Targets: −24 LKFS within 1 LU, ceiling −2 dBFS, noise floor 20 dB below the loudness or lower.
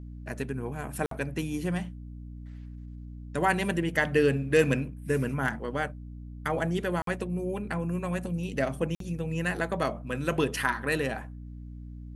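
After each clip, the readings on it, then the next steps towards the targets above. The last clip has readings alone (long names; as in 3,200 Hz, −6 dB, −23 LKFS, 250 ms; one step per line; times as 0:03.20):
number of dropouts 3; longest dropout 53 ms; mains hum 60 Hz; hum harmonics up to 300 Hz; level of the hum −39 dBFS; integrated loudness −29.5 LKFS; sample peak −9.5 dBFS; target loudness −24.0 LKFS
→ repair the gap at 0:01.06/0:07.02/0:08.95, 53 ms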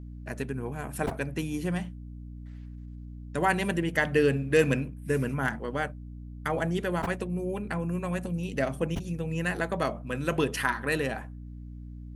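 number of dropouts 0; mains hum 60 Hz; hum harmonics up to 300 Hz; level of the hum −39 dBFS
→ hum removal 60 Hz, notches 5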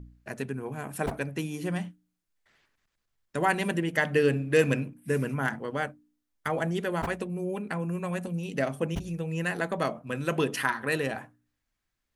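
mains hum none found; integrated loudness −30.0 LKFS; sample peak −9.5 dBFS; target loudness −24.0 LKFS
→ level +6 dB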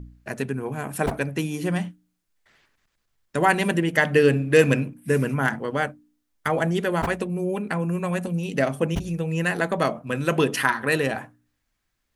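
integrated loudness −24.0 LKFS; sample peak −3.5 dBFS; background noise floor −76 dBFS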